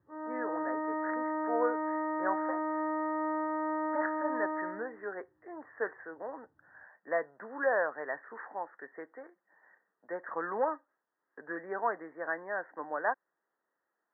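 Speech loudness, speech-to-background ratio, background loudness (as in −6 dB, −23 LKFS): −37.0 LKFS, −3.0 dB, −34.0 LKFS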